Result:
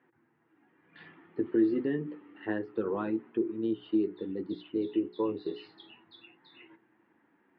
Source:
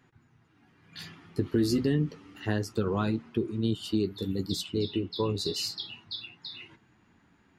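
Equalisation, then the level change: distance through air 400 m; cabinet simulation 240–3500 Hz, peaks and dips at 330 Hz +9 dB, 510 Hz +5 dB, 910 Hz +4 dB, 1.8 kHz +6 dB; hum notches 60/120/180/240/300/360/420 Hz; -4.0 dB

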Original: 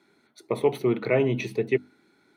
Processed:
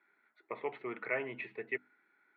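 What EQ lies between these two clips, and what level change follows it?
band-pass filter 1.8 kHz, Q 2.1; distance through air 500 m; +3.0 dB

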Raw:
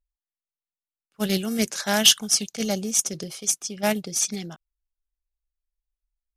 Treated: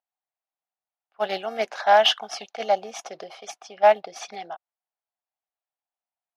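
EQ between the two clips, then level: resonant high-pass 730 Hz, resonance Q 4.9; distance through air 330 m; +3.0 dB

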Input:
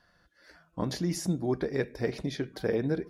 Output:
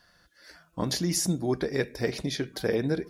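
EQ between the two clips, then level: treble shelf 3 kHz +10 dB; +1.5 dB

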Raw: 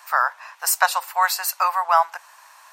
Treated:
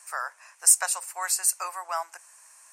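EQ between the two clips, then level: FFT filter 300 Hz 0 dB, 890 Hz -17 dB, 2.4 kHz -9 dB, 3.6 kHz -17 dB, 6.1 kHz -1 dB, 9.2 kHz +7 dB, 15 kHz -16 dB; +1.0 dB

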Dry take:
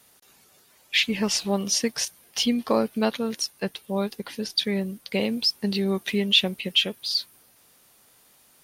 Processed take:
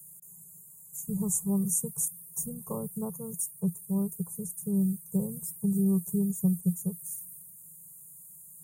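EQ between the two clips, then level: elliptic band-stop 1–7.5 kHz, stop band 40 dB; dynamic bell 6.7 kHz, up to -5 dB, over -55 dBFS, Q 1.8; FFT filter 110 Hz 0 dB, 170 Hz +15 dB, 270 Hz -30 dB, 390 Hz -8 dB, 660 Hz -20 dB, 1.1 kHz -11 dB, 4.6 kHz -23 dB, 6.6 kHz +8 dB, 10 kHz +11 dB; 0.0 dB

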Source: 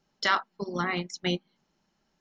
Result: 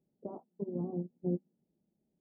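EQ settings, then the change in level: Gaussian low-pass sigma 18 samples; high-pass 52 Hz; bass shelf 100 Hz -11 dB; +1.0 dB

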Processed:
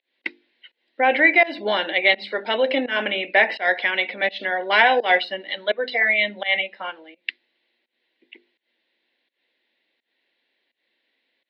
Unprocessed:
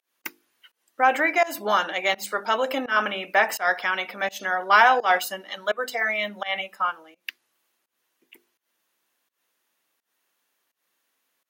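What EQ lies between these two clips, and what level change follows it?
cabinet simulation 230–4200 Hz, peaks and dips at 240 Hz +4 dB, 340 Hz +4 dB, 540 Hz +4 dB, 1.3 kHz +9 dB, 2 kHz +8 dB, 4 kHz +7 dB; static phaser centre 3 kHz, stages 4; +4.0 dB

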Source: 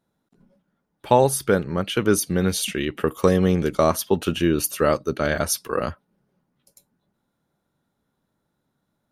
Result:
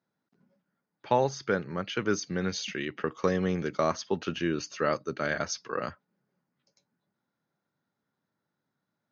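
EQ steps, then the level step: high-pass 100 Hz 24 dB/octave; rippled Chebyshev low-pass 6.6 kHz, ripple 6 dB; -3.5 dB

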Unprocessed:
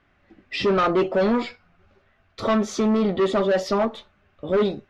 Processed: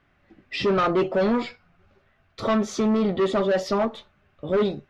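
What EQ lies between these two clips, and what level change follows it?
peaking EQ 140 Hz +6 dB 0.34 oct; -1.5 dB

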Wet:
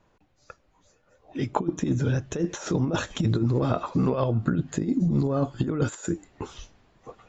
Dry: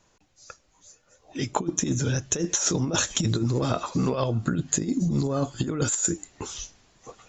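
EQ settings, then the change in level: treble shelf 2.4 kHz -8.5 dB; peaking EQ 6.6 kHz -10 dB 1 oct; +1.5 dB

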